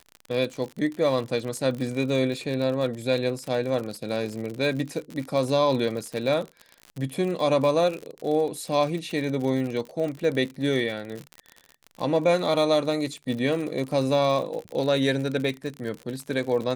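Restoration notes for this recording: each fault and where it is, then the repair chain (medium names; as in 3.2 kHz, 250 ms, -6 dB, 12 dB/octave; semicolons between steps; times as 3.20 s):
crackle 57 per s -30 dBFS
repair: de-click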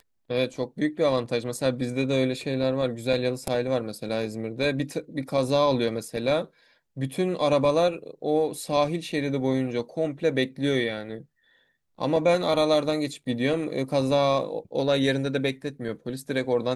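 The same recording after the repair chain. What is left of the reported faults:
nothing left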